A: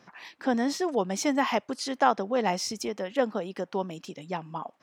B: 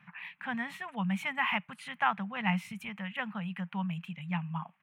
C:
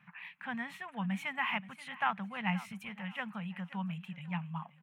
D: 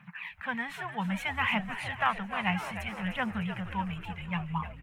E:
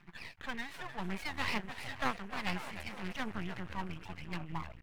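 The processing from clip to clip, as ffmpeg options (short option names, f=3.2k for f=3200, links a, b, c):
-af "firequalizer=gain_entry='entry(110,0);entry(170,13);entry(310,-28);entry(870,-1);entry(2500,10);entry(5100,-25);entry(9400,-5)':delay=0.05:min_phase=1,volume=-4dB"
-af "aecho=1:1:528|1056|1584:0.141|0.0438|0.0136,volume=-3.5dB"
-filter_complex "[0:a]aphaser=in_gain=1:out_gain=1:delay=3:decay=0.47:speed=0.62:type=triangular,asplit=8[a][b][c][d][e][f][g][h];[b]adelay=303,afreqshift=-100,volume=-10.5dB[i];[c]adelay=606,afreqshift=-200,volume=-15.1dB[j];[d]adelay=909,afreqshift=-300,volume=-19.7dB[k];[e]adelay=1212,afreqshift=-400,volume=-24.2dB[l];[f]adelay=1515,afreqshift=-500,volume=-28.8dB[m];[g]adelay=1818,afreqshift=-600,volume=-33.4dB[n];[h]adelay=2121,afreqshift=-700,volume=-38dB[o];[a][i][j][k][l][m][n][o]amix=inputs=8:normalize=0,volume=5dB"
-af "aeval=exprs='max(val(0),0)':c=same,volume=-2.5dB"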